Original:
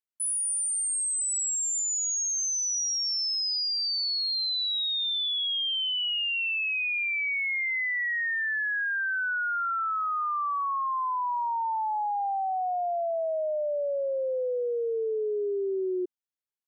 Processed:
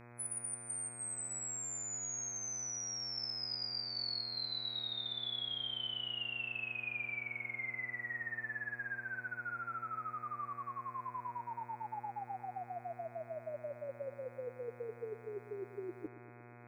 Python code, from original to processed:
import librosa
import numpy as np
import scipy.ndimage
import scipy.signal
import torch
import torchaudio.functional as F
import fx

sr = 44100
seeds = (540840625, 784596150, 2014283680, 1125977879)

y = fx.spec_gate(x, sr, threshold_db=-10, keep='weak')
y = fx.dmg_buzz(y, sr, base_hz=120.0, harmonics=21, level_db=-67.0, tilt_db=-4, odd_only=False)
y = fx.echo_bbd(y, sr, ms=118, stages=4096, feedback_pct=71, wet_db=-15.5)
y = y * librosa.db_to_amplitude(11.5)